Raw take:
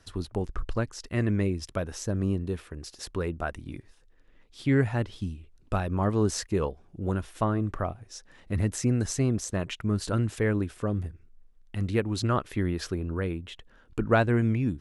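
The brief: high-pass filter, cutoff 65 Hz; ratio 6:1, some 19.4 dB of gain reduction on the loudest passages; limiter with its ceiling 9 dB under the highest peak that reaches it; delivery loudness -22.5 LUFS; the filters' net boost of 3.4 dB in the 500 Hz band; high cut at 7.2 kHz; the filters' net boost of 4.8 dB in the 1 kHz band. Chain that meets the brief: high-pass 65 Hz; low-pass 7.2 kHz; peaking EQ 500 Hz +3 dB; peaking EQ 1 kHz +5.5 dB; compression 6:1, threshold -35 dBFS; trim +19 dB; peak limiter -10.5 dBFS

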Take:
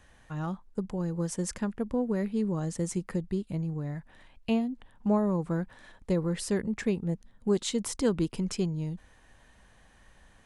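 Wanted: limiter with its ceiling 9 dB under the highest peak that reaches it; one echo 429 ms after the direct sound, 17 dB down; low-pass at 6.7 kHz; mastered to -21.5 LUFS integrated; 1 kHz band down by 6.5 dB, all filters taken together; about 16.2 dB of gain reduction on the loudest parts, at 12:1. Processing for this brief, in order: low-pass 6.7 kHz; peaking EQ 1 kHz -8.5 dB; compression 12:1, threshold -39 dBFS; peak limiter -36 dBFS; delay 429 ms -17 dB; trim +24.5 dB

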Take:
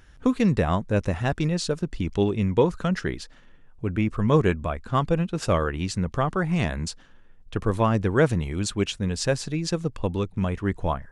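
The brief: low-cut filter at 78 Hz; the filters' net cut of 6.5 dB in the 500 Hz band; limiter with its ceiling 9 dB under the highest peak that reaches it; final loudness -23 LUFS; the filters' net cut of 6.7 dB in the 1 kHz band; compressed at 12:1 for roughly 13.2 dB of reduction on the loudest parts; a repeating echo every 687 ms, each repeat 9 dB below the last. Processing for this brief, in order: high-pass 78 Hz; peaking EQ 500 Hz -6.5 dB; peaking EQ 1 kHz -6.5 dB; compression 12:1, threshold -32 dBFS; peak limiter -29 dBFS; feedback delay 687 ms, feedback 35%, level -9 dB; trim +16 dB

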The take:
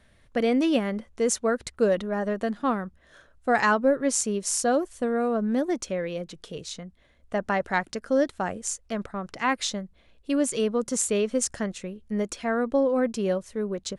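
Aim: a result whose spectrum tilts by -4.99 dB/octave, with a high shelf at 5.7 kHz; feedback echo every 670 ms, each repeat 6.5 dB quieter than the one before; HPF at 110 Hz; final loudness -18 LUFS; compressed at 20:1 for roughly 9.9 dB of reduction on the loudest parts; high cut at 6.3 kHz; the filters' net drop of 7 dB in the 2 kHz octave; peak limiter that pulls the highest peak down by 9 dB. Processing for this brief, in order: high-pass 110 Hz; low-pass 6.3 kHz; peaking EQ 2 kHz -8.5 dB; treble shelf 5.7 kHz -8 dB; compression 20:1, threshold -27 dBFS; peak limiter -26 dBFS; feedback delay 670 ms, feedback 47%, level -6.5 dB; trim +16.5 dB

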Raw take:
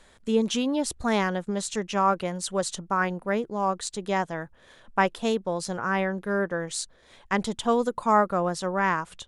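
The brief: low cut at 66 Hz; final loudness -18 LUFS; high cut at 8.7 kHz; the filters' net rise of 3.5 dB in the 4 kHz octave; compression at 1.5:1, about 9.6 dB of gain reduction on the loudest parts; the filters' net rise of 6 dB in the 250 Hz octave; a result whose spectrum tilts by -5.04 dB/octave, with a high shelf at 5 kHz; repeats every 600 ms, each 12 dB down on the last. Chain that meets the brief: high-pass 66 Hz; low-pass 8.7 kHz; peaking EQ 250 Hz +7.5 dB; peaking EQ 4 kHz +6.5 dB; treble shelf 5 kHz -4.5 dB; compression 1.5:1, threshold -41 dBFS; feedback delay 600 ms, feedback 25%, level -12 dB; trim +14 dB

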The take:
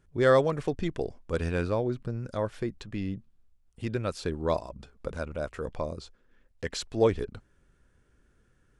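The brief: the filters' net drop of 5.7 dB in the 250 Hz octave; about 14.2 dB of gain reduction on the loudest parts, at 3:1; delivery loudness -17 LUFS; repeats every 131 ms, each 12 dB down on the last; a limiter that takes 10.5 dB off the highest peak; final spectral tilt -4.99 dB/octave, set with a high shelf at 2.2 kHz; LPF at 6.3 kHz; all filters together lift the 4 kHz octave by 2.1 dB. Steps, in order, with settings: low-pass 6.3 kHz; peaking EQ 250 Hz -8.5 dB; treble shelf 2.2 kHz -5.5 dB; peaking EQ 4 kHz +8 dB; compression 3:1, threshold -38 dBFS; peak limiter -36 dBFS; feedback delay 131 ms, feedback 25%, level -12 dB; trim +30 dB

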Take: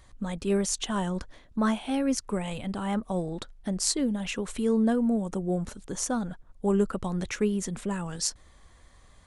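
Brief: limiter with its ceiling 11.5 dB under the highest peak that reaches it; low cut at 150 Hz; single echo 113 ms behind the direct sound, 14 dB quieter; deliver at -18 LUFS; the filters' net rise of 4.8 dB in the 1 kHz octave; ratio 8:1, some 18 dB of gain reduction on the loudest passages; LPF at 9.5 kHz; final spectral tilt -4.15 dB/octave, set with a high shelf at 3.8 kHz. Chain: high-pass 150 Hz; low-pass 9.5 kHz; peaking EQ 1 kHz +5.5 dB; treble shelf 3.8 kHz +8 dB; compression 8:1, threshold -38 dBFS; peak limiter -32 dBFS; delay 113 ms -14 dB; trim +24.5 dB

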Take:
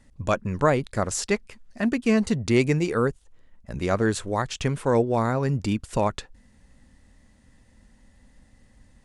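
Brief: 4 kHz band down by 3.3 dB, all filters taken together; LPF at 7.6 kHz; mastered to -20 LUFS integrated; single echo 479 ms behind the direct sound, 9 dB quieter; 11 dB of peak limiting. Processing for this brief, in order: low-pass 7.6 kHz; peaking EQ 4 kHz -4 dB; peak limiter -18 dBFS; delay 479 ms -9 dB; trim +9 dB

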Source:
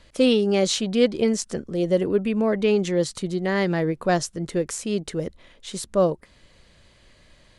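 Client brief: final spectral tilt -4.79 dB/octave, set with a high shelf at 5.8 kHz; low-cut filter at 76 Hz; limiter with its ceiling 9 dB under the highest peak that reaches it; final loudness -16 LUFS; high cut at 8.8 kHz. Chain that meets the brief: high-pass 76 Hz; low-pass 8.8 kHz; treble shelf 5.8 kHz +3.5 dB; trim +10.5 dB; peak limiter -6 dBFS

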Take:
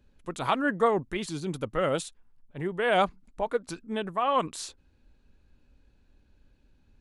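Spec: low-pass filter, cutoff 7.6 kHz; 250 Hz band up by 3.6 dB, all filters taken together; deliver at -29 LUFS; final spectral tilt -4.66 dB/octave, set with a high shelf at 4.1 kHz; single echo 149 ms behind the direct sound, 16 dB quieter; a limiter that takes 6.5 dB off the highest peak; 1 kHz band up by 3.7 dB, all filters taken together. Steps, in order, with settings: low-pass 7.6 kHz; peaking EQ 250 Hz +4.5 dB; peaking EQ 1 kHz +4 dB; treble shelf 4.1 kHz +7 dB; peak limiter -15.5 dBFS; delay 149 ms -16 dB; trim -1 dB

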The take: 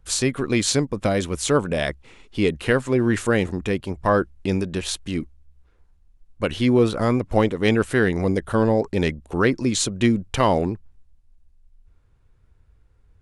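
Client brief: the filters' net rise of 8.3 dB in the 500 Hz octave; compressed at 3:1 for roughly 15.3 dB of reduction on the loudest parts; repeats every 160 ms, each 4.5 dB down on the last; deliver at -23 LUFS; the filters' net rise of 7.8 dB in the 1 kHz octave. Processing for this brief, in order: peaking EQ 500 Hz +8.5 dB; peaking EQ 1 kHz +7 dB; compression 3:1, threshold -27 dBFS; feedback delay 160 ms, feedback 60%, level -4.5 dB; trim +3.5 dB

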